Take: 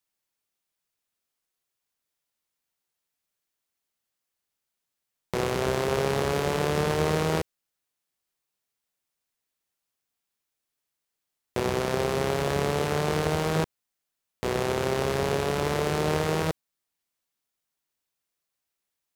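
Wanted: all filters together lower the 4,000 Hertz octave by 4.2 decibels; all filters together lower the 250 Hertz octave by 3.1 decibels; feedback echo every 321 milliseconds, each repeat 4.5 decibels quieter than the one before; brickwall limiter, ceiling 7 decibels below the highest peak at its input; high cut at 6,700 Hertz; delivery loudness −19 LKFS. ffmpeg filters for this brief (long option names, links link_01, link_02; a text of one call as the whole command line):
ffmpeg -i in.wav -af "lowpass=6700,equalizer=frequency=250:width_type=o:gain=-5.5,equalizer=frequency=4000:width_type=o:gain=-5,alimiter=limit=-17.5dB:level=0:latency=1,aecho=1:1:321|642|963|1284|1605|1926|2247|2568|2889:0.596|0.357|0.214|0.129|0.0772|0.0463|0.0278|0.0167|0.01,volume=11.5dB" out.wav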